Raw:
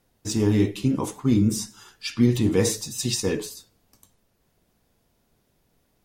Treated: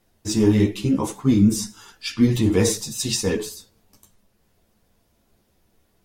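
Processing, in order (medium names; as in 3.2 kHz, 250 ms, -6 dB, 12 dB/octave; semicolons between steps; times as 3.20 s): chorus voices 6, 1.1 Hz, delay 12 ms, depth 3.1 ms; trim +5.5 dB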